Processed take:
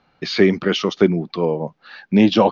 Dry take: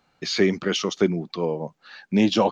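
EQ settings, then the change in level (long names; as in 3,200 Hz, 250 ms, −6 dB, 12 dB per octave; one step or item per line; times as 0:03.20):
low-pass with resonance 6,000 Hz, resonance Q 1.5
high-frequency loss of the air 220 metres
+6.0 dB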